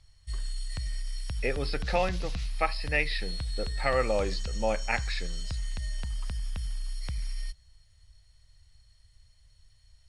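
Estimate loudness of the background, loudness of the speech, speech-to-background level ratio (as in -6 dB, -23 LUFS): -37.0 LUFS, -31.5 LUFS, 5.5 dB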